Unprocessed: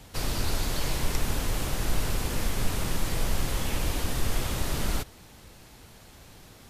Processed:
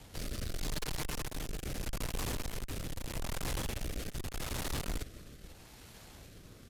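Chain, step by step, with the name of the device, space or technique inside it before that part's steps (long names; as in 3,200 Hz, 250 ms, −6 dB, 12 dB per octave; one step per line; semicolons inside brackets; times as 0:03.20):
0:00.59–0:01.65: comb filter 6.6 ms, depth 57%
single-tap delay 553 ms −22.5 dB
overdriven rotary cabinet (tube saturation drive 35 dB, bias 0.7; rotating-speaker cabinet horn 0.8 Hz)
level +3 dB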